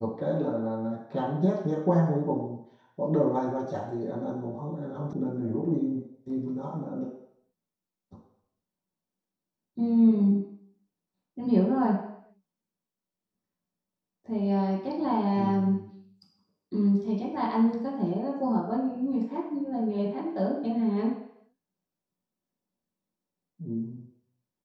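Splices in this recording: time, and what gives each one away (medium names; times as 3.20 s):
5.13 s: sound stops dead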